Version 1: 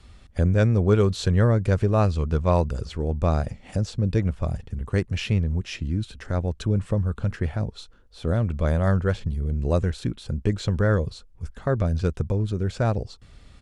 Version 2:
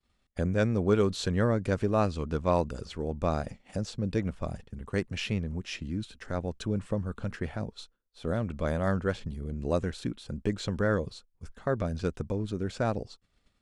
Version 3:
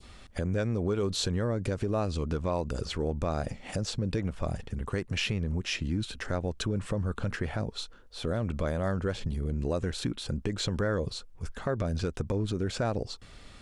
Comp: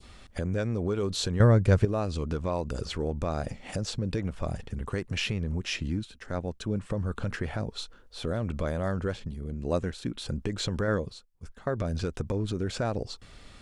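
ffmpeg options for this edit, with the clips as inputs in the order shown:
-filter_complex "[1:a]asplit=3[s0][s1][s2];[2:a]asplit=5[s3][s4][s5][s6][s7];[s3]atrim=end=1.402[s8];[0:a]atrim=start=1.398:end=1.852[s9];[s4]atrim=start=1.848:end=5.992[s10];[s0]atrim=start=5.988:end=6.902[s11];[s5]atrim=start=6.898:end=9.142[s12];[s1]atrim=start=9.138:end=10.152[s13];[s6]atrim=start=10.148:end=10.882[s14];[s2]atrim=start=10.878:end=11.692[s15];[s7]atrim=start=11.688[s16];[s8][s9]acrossfade=d=0.004:c1=hsin:c2=hsin[s17];[s17][s10]acrossfade=d=0.004:c1=hsin:c2=hsin[s18];[s18][s11]acrossfade=d=0.004:c1=hsin:c2=hsin[s19];[s19][s12]acrossfade=d=0.004:c1=hsin:c2=hsin[s20];[s20][s13]acrossfade=d=0.004:c1=hsin:c2=hsin[s21];[s21][s14]acrossfade=d=0.004:c1=hsin:c2=hsin[s22];[s22][s15]acrossfade=d=0.004:c1=hsin:c2=hsin[s23];[s23][s16]acrossfade=d=0.004:c1=hsin:c2=hsin"

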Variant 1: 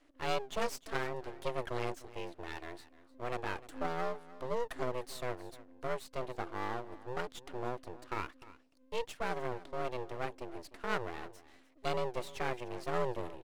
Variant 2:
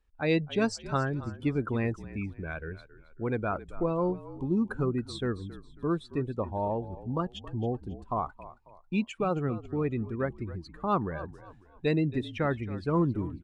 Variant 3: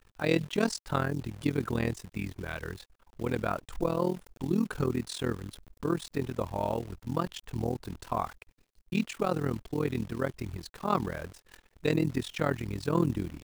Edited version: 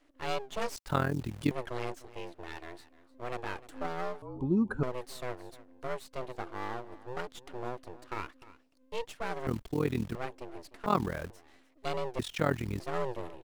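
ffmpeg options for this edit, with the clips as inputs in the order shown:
-filter_complex "[2:a]asplit=4[s0][s1][s2][s3];[0:a]asplit=6[s4][s5][s6][s7][s8][s9];[s4]atrim=end=0.762[s10];[s0]atrim=start=0.758:end=1.512[s11];[s5]atrim=start=1.508:end=4.222[s12];[1:a]atrim=start=4.218:end=4.832[s13];[s6]atrim=start=4.828:end=9.472[s14];[s1]atrim=start=9.468:end=10.152[s15];[s7]atrim=start=10.148:end=10.862[s16];[s2]atrim=start=10.858:end=11.302[s17];[s8]atrim=start=11.298:end=12.192[s18];[s3]atrim=start=12.188:end=12.802[s19];[s9]atrim=start=12.798[s20];[s10][s11]acrossfade=d=0.004:c1=hsin:c2=hsin[s21];[s21][s12]acrossfade=d=0.004:c1=hsin:c2=hsin[s22];[s22][s13]acrossfade=d=0.004:c1=hsin:c2=hsin[s23];[s23][s14]acrossfade=d=0.004:c1=hsin:c2=hsin[s24];[s24][s15]acrossfade=d=0.004:c1=hsin:c2=hsin[s25];[s25][s16]acrossfade=d=0.004:c1=hsin:c2=hsin[s26];[s26][s17]acrossfade=d=0.004:c1=hsin:c2=hsin[s27];[s27][s18]acrossfade=d=0.004:c1=hsin:c2=hsin[s28];[s28][s19]acrossfade=d=0.004:c1=hsin:c2=hsin[s29];[s29][s20]acrossfade=d=0.004:c1=hsin:c2=hsin"

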